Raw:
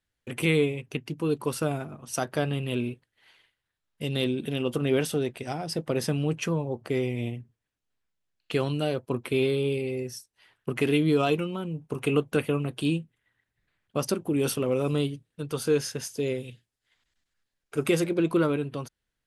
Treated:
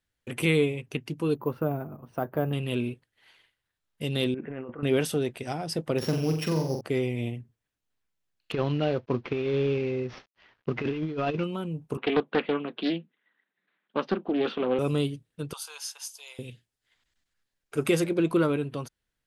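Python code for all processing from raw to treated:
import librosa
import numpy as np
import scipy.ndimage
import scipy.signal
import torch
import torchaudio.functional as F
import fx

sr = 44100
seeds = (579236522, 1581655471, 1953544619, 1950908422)

y = fx.chain(x, sr, fx.lowpass(hz=1200.0, slope=12),
    fx.resample_bad(factor=3, down='filtered', up='hold'), at=(1.35, 2.53))
y = fx.chain(y, sr, fx.steep_lowpass(hz=2000.0, slope=48),
    fx.tilt_eq(slope=3.0),
    fx.over_compress(threshold_db=-37.0, ratio=-1.0), at=(4.34, 4.83))
y = fx.chain(y, sr, fx.sample_sort(block=8),
    fx.high_shelf(hz=6200.0, db=-7.5),
    fx.room_flutter(wall_m=7.6, rt60_s=0.51), at=(5.98, 6.81))
y = fx.chain(y, sr, fx.cvsd(bps=32000),
    fx.lowpass(hz=2900.0, slope=12),
    fx.over_compress(threshold_db=-26.0, ratio=-0.5), at=(8.52, 11.44))
y = fx.chain(y, sr, fx.cheby1_bandpass(low_hz=190.0, high_hz=3800.0, order=4),
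    fx.peak_eq(hz=1200.0, db=3.5, octaves=1.2),
    fx.doppler_dist(depth_ms=0.32), at=(11.97, 14.79))
y = fx.chain(y, sr, fx.cheby1_highpass(hz=850.0, order=4),
    fx.peak_eq(hz=1800.0, db=-12.5, octaves=0.83), at=(15.53, 16.39))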